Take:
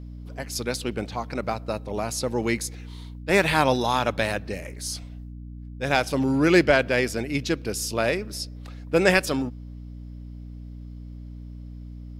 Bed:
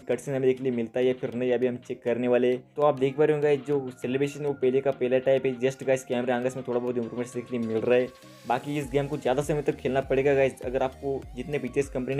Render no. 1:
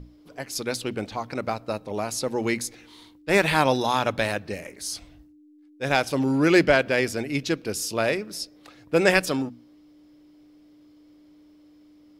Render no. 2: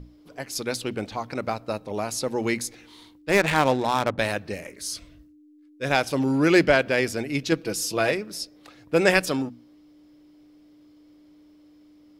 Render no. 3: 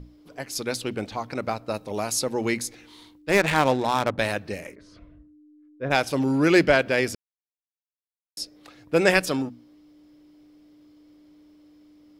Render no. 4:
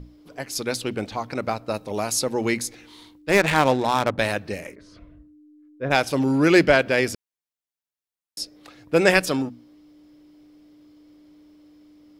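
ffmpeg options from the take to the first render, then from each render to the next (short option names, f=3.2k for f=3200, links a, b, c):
-af "bandreject=f=60:t=h:w=6,bandreject=f=120:t=h:w=6,bandreject=f=180:t=h:w=6,bandreject=f=240:t=h:w=6"
-filter_complex "[0:a]asettb=1/sr,asplit=3[a][b][c];[a]atrim=end=3.314[d];[b]atrim=start=3.31:end=4.19,asetpts=PTS-STARTPTS,afade=t=in:d=0.004:c=qsin,afade=t=out:st=0.876:d=0.004:c=qsin,adynamicsmooth=sensitivity=2.5:basefreq=720[e];[c]atrim=start=4.186[f];[d][e]acrossfade=d=0.004:c1=hsin:c2=qsin[g];[g][f]acrossfade=d=0.004:c1=qsin:c2=hsin,asettb=1/sr,asplit=3[h][i][j];[h]atrim=end=4.714[k];[i]atrim=start=4.71:end=5.86,asetpts=PTS-STARTPTS,afade=t=in:d=0.004:c=qsin,afade=t=out:st=1.146:d=0.004:c=qsin,asuperstop=centerf=800:order=4:qfactor=3.1[l];[j]atrim=start=5.856[m];[k][l]acrossfade=d=0.004:c1=hsin:c2=qsin[n];[n][m]acrossfade=d=0.004:c1=qsin:c2=hsin,asettb=1/sr,asplit=3[o][p][q];[o]atrim=end=7.514[r];[p]atrim=start=7.51:end=8.11,asetpts=PTS-STARTPTS,afade=t=in:d=0.004:c=qsin,afade=t=out:st=0.596:d=0.004:c=qsin,aecho=1:1:6.1:0.61,atrim=end_sample=26460[s];[q]atrim=start=8.106[t];[r][s]acrossfade=d=0.004:c1=hsin:c2=qsin[u];[u][t]acrossfade=d=0.004:c1=qsin:c2=hsin"
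-filter_complex "[0:a]asettb=1/sr,asplit=3[a][b][c];[a]atrim=end=1.744[d];[b]atrim=start=1.74:end=2.24,asetpts=PTS-STARTPTS,afade=t=in:d=0.004:c=qsin,afade=t=out:st=0.496:d=0.004:c=qsin,highshelf=f=4.1k:g=6.5[e];[c]atrim=start=2.236[f];[d][e]acrossfade=d=0.004:c1=hsin:c2=qsin[g];[g][f]acrossfade=d=0.004:c1=qsin:c2=hsin,asplit=3[h][i][j];[h]afade=t=out:st=4.74:d=0.02[k];[i]lowpass=1.3k,afade=t=in:st=4.74:d=0.02,afade=t=out:st=5.9:d=0.02[l];[j]afade=t=in:st=5.9:d=0.02[m];[k][l][m]amix=inputs=3:normalize=0,asplit=3[n][o][p];[n]atrim=end=7.15,asetpts=PTS-STARTPTS,afade=t=out:st=7.146:d=0.004:c=hsin[q];[o]atrim=start=7.15:end=8.37,asetpts=PTS-STARTPTS,volume=0[r];[p]atrim=start=8.37,asetpts=PTS-STARTPTS,afade=t=in:d=0.004:c=hsin[s];[q][r][s]concat=n=3:v=0:a=1"
-af "volume=2dB"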